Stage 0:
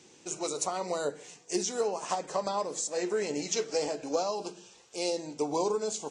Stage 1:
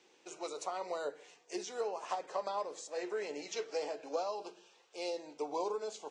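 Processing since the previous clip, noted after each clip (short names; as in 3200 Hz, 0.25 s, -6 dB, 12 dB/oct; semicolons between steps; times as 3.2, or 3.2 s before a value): three-band isolator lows -19 dB, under 340 Hz, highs -14 dB, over 4500 Hz; gain -5 dB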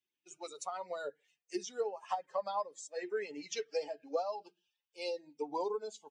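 per-bin expansion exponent 2; gain +4.5 dB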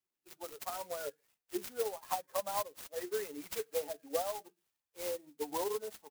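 clock jitter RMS 0.092 ms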